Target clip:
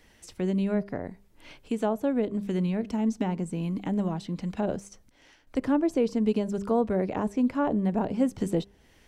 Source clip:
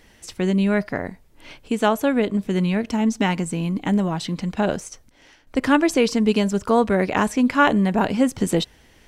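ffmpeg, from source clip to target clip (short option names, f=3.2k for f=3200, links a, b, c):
-filter_complex "[0:a]bandreject=f=199.6:t=h:w=4,bandreject=f=399.2:t=h:w=4,acrossover=split=520|810[a][b][c];[c]acompressor=threshold=-39dB:ratio=5[d];[a][b][d]amix=inputs=3:normalize=0,volume=-6dB"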